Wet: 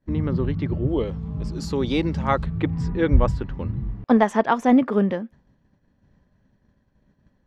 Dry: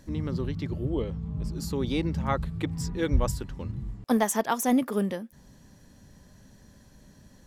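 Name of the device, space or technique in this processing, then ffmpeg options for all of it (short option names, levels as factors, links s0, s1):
hearing-loss simulation: -filter_complex "[0:a]asettb=1/sr,asplit=3[s0][s1][s2];[s0]atrim=end=0.894[s3];[s1]atrim=start=0.89:end=2.46,asetpts=PTS-STARTPTS,afade=t=in:d=0.004:c=qsin,afade=t=out:st=1.566:d=0.004:c=qsin,bass=f=250:g=-4,treble=f=4000:g=15[s4];[s2]atrim=start=2.456[s5];[s3][s4]acrossfade=d=0.004:c1=hsin:c2=qsin[s6];[s6][s5]acrossfade=d=0.004:c1=qsin:c2=hsin,lowpass=2400,agate=range=0.0224:threshold=0.00794:ratio=3:detection=peak,volume=2.24"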